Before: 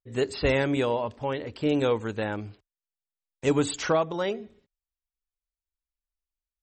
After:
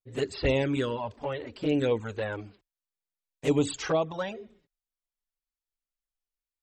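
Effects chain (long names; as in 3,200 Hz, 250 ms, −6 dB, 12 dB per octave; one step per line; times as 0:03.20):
flanger swept by the level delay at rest 9.1 ms, full sweep at −19 dBFS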